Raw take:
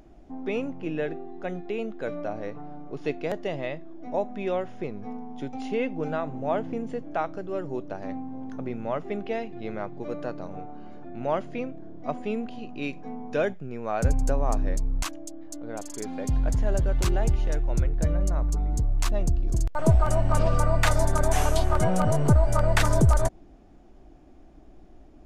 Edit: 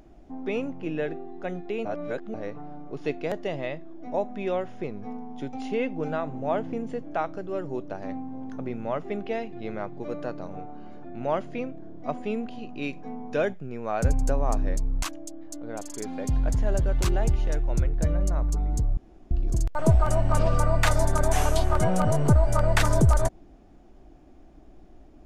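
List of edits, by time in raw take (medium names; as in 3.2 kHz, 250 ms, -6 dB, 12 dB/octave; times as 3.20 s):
1.85–2.34 s: reverse
18.97–19.31 s: room tone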